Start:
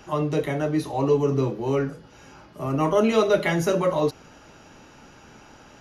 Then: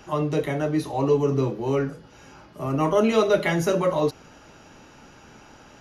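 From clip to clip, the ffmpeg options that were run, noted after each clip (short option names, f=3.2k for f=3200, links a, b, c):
-af anull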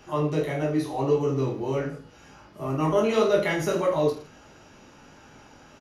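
-filter_complex "[0:a]asplit=2[a][b];[b]aecho=0:1:20|45|76.25|115.3|164.1:0.631|0.398|0.251|0.158|0.1[c];[a][c]amix=inputs=2:normalize=0,flanger=delay=6.6:depth=8.2:regen=-70:speed=1.5:shape=triangular"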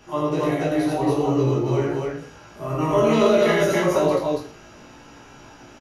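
-filter_complex "[0:a]asplit=2[a][b];[b]adelay=17,volume=-4dB[c];[a][c]amix=inputs=2:normalize=0,asplit=2[d][e];[e]aecho=0:1:84.55|279.9:0.891|0.891[f];[d][f]amix=inputs=2:normalize=0"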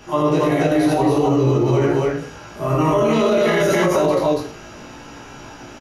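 -af "alimiter=level_in=15dB:limit=-1dB:release=50:level=0:latency=1,volume=-7.5dB"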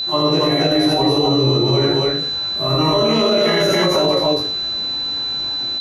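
-af "aeval=exprs='val(0)+0.1*sin(2*PI*4000*n/s)':c=same"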